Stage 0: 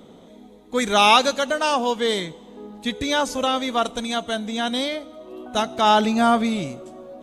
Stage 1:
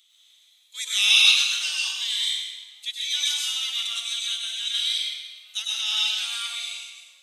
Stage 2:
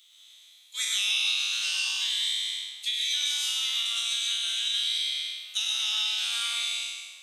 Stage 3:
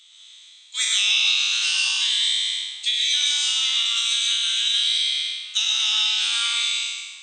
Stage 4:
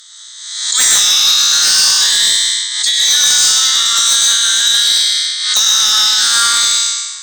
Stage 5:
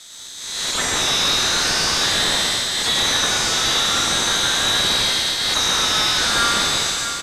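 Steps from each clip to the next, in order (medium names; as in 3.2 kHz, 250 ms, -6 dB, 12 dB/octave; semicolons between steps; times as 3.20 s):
Chebyshev high-pass 2.9 kHz, order 3; reverberation RT60 1.5 s, pre-delay 94 ms, DRR -5 dB
spectral sustain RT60 1.10 s; high-pass 460 Hz 24 dB/octave; compression 5:1, threshold -27 dBFS, peak gain reduction 16 dB; trim +1.5 dB
FFT band-pass 770–8900 Hz; trim +7 dB
FFT filter 570 Hz 0 dB, 1.2 kHz +11 dB, 1.8 kHz +14 dB, 2.5 kHz -14 dB, 4.5 kHz +12 dB; sine folder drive 8 dB, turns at 0 dBFS; swell ahead of each attack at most 51 dB/s; trim -5 dB
CVSD coder 64 kbps; on a send: delay 650 ms -9.5 dB; on the sum: trim -2 dB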